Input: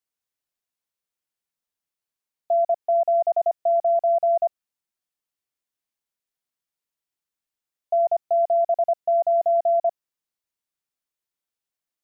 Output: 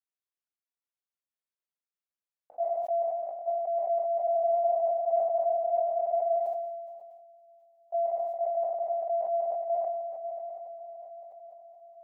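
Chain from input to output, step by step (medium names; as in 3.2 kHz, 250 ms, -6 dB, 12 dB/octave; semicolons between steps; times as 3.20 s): trance gate "xxxxxx..x.xxxxx." 186 bpm -60 dB; gated-style reverb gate 130 ms falling, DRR 10 dB; level held to a coarse grid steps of 9 dB; tone controls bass -9 dB, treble -6 dB; echo that smears into a reverb 562 ms, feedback 54%, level -6.5 dB; spectral freeze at 4.25 s, 2.12 s; decay stretcher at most 31 dB/s; trim -8.5 dB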